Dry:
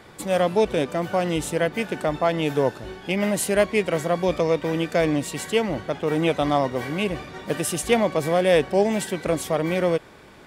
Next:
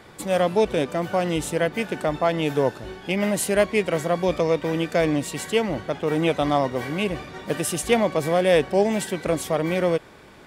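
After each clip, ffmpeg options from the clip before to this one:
ffmpeg -i in.wav -af anull out.wav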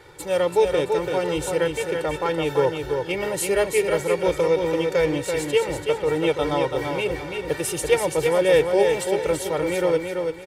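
ffmpeg -i in.wav -filter_complex "[0:a]aecho=1:1:2.2:0.96,asplit=2[link_01][link_02];[link_02]aecho=0:1:335|670|1005|1340:0.562|0.18|0.0576|0.0184[link_03];[link_01][link_03]amix=inputs=2:normalize=0,volume=-3.5dB" out.wav

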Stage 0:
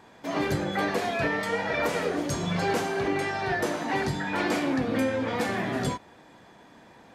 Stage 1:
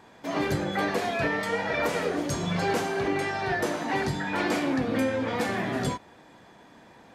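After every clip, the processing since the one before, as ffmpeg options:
ffmpeg -i in.wav -af anull out.wav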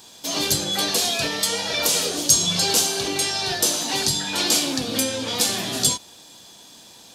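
ffmpeg -i in.wav -af "aexciter=amount=9.9:drive=6.2:freq=3000,volume=-1dB" out.wav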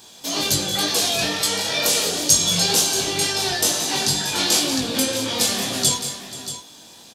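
ffmpeg -i in.wav -filter_complex "[0:a]flanger=delay=18.5:depth=3.8:speed=2.1,acrusher=bits=11:mix=0:aa=0.000001,asplit=2[link_01][link_02];[link_02]aecho=0:1:176|212|481|631:0.237|0.15|0.119|0.237[link_03];[link_01][link_03]amix=inputs=2:normalize=0,volume=4dB" out.wav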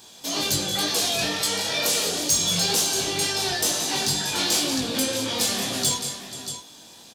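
ffmpeg -i in.wav -af "asoftclip=type=tanh:threshold=-12.5dB,volume=-2dB" out.wav

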